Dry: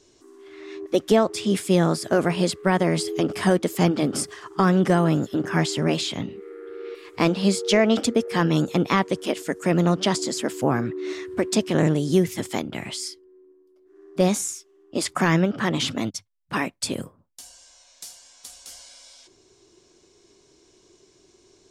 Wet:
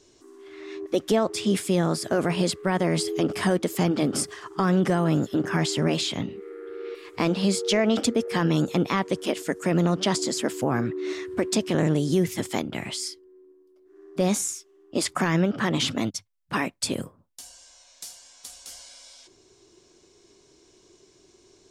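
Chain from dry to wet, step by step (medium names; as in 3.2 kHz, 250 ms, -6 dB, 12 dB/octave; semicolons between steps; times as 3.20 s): peak limiter -12.5 dBFS, peak gain reduction 5.5 dB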